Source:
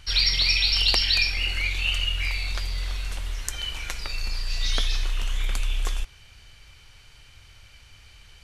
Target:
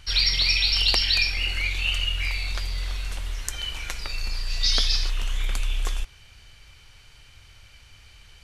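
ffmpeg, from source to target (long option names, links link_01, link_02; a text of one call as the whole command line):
ffmpeg -i in.wav -filter_complex "[0:a]asettb=1/sr,asplit=3[link_01][link_02][link_03];[link_01]atrim=end=4.634[link_04];[link_02]atrim=start=4.63:end=5.1,asetpts=PTS-STARTPTS,afade=type=in:duration=0.004:curve=qsin,afade=type=out:start_time=0.466:duration=0.004:curve=qsin,equalizer=frequency=4900:width=3.2:gain=14.5[link_05];[link_03]atrim=start=5.096[link_06];[link_04][link_05]acrossfade=duration=0.004:curve1=hsin:curve2=qsin[link_07];[link_07][link_06]acrossfade=duration=0.004:curve1=qsin:curve2=hsin" out.wav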